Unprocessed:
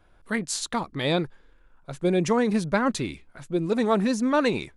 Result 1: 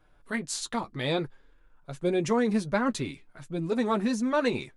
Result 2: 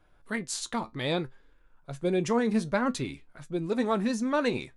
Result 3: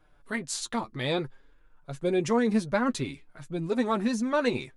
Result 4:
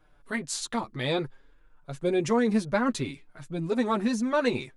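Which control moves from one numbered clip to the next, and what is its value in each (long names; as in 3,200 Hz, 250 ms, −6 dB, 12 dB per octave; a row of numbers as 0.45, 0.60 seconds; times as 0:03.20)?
flanger, regen: −32, +70, +25, +2%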